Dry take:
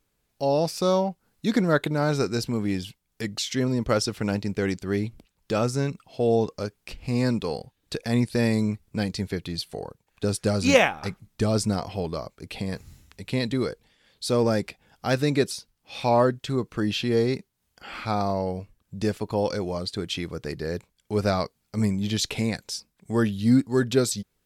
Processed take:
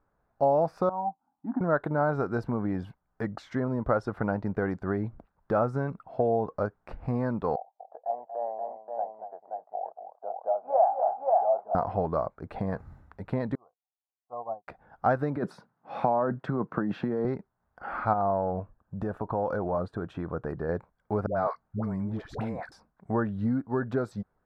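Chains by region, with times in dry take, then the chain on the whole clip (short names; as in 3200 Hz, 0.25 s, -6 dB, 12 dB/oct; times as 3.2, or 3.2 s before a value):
0.89–1.61 double band-pass 470 Hz, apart 1.6 oct + air absorption 250 m
7.56–11.75 Butterworth band-pass 720 Hz, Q 3.4 + tapped delay 0.235/0.529 s -9.5/-4 dB
13.55–14.68 treble ducked by the level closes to 950 Hz, closed at -19 dBFS + vocal tract filter a + upward expander 2.5:1, over -58 dBFS
15.36–17.25 tone controls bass +6 dB, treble -4 dB + negative-ratio compressor -24 dBFS + HPF 150 Hz 24 dB/oct
18.13–20.69 compressor, threshold -27 dBFS + bell 4700 Hz -7 dB 0.47 oct + notch 2100 Hz, Q 5.4
21.26–22.72 compressor, threshold -27 dBFS + dispersion highs, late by 0.105 s, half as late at 580 Hz
whole clip: notch 3100 Hz, Q 18; compressor, threshold -25 dBFS; EQ curve 420 Hz 0 dB, 700 Hz +9 dB, 1500 Hz +5 dB, 2500 Hz -17 dB, 6800 Hz -28 dB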